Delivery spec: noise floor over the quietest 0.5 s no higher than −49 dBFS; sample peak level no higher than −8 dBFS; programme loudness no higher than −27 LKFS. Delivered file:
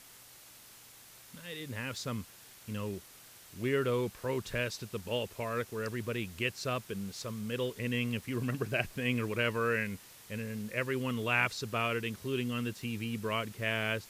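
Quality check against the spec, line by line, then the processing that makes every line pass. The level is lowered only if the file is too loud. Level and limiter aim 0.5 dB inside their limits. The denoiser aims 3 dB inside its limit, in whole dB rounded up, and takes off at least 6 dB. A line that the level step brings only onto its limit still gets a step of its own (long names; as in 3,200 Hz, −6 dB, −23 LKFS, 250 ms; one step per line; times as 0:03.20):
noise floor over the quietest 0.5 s −55 dBFS: in spec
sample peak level −13.5 dBFS: in spec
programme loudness −34.5 LKFS: in spec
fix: no processing needed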